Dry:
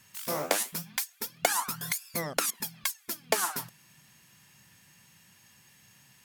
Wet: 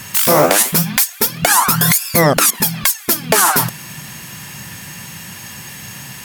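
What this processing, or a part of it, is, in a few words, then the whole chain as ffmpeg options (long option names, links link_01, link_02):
mastering chain: -af "equalizer=frequency=4500:width_type=o:width=2.6:gain=-3,acompressor=threshold=-34dB:ratio=2,asoftclip=type=tanh:threshold=-20dB,alimiter=level_in=29.5dB:limit=-1dB:release=50:level=0:latency=1,volume=-1dB"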